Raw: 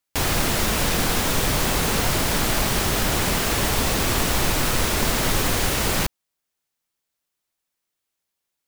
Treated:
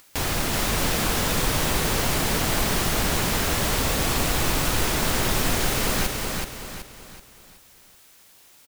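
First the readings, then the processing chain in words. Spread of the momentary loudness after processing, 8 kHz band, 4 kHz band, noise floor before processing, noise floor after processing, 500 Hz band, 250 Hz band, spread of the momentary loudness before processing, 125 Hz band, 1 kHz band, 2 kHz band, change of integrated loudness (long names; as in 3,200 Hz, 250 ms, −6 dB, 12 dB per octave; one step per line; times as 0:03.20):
6 LU, −1.5 dB, −1.5 dB, −81 dBFS, −53 dBFS, −1.5 dB, −1.5 dB, 0 LU, −1.5 dB, −1.5 dB, −1.5 dB, −2.0 dB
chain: upward compression, threshold −27 dBFS
on a send: repeating echo 377 ms, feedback 40%, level −3.5 dB
on the sum: level −3.5 dB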